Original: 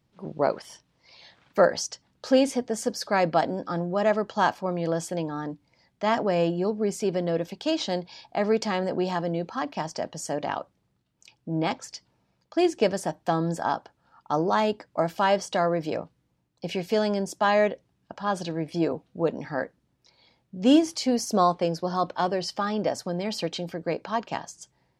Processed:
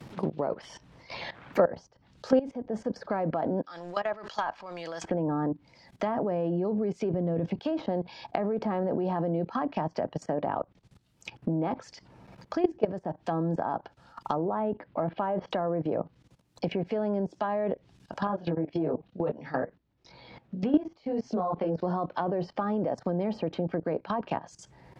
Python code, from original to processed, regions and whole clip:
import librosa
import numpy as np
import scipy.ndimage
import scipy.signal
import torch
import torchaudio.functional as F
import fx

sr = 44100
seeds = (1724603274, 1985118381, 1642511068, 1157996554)

y = fx.chain(x, sr, fx.bandpass_q(hz=6200.0, q=0.69),
    fx.leveller(passes=1),
    fx.sustainer(db_per_s=140.0), at=(3.62, 5.04))
y = fx.chain(y, sr, fx.highpass(hz=59.0, slope=12),
    fx.peak_eq(hz=81.0, db=14.5, octaves=2.2),
    fx.over_compress(threshold_db=-27.0, ratio=-1.0), at=(7.13, 7.59))
y = fx.chain(y, sr, fx.lowpass(hz=3800.0, slope=24),
    fx.high_shelf(hz=3000.0, db=-11.5), at=(14.45, 15.51))
y = fx.chain(y, sr, fx.air_absorb(metres=130.0),
    fx.detune_double(cents=21), at=(18.27, 21.78))
y = fx.level_steps(y, sr, step_db=18)
y = fx.env_lowpass_down(y, sr, base_hz=1000.0, full_db=-33.0)
y = fx.band_squash(y, sr, depth_pct=70)
y = y * librosa.db_to_amplitude(8.0)